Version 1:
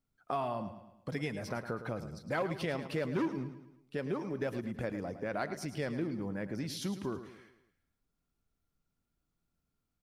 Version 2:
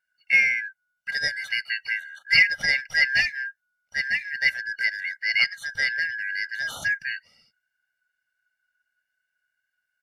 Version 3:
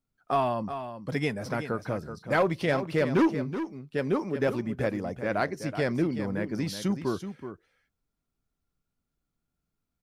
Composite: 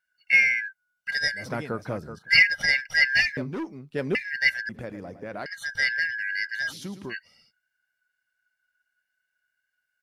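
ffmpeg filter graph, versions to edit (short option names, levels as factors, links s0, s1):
-filter_complex "[2:a]asplit=2[s0][s1];[0:a]asplit=2[s2][s3];[1:a]asplit=5[s4][s5][s6][s7][s8];[s4]atrim=end=1.49[s9];[s0]atrim=start=1.33:end=2.3[s10];[s5]atrim=start=2.14:end=3.372[s11];[s1]atrim=start=3.368:end=4.152[s12];[s6]atrim=start=4.148:end=4.692[s13];[s2]atrim=start=4.688:end=5.462[s14];[s7]atrim=start=5.458:end=6.74[s15];[s3]atrim=start=6.68:end=7.15[s16];[s8]atrim=start=7.09[s17];[s9][s10]acrossfade=d=0.16:c1=tri:c2=tri[s18];[s18][s11]acrossfade=d=0.16:c1=tri:c2=tri[s19];[s19][s12]acrossfade=d=0.004:c1=hsin:c2=hsin[s20];[s20][s13]acrossfade=d=0.004:c1=hsin:c2=hsin[s21];[s21][s14]acrossfade=d=0.004:c1=hsin:c2=hsin[s22];[s22][s15]acrossfade=d=0.004:c1=hsin:c2=hsin[s23];[s23][s16]acrossfade=d=0.06:c1=tri:c2=tri[s24];[s24][s17]acrossfade=d=0.06:c1=tri:c2=tri"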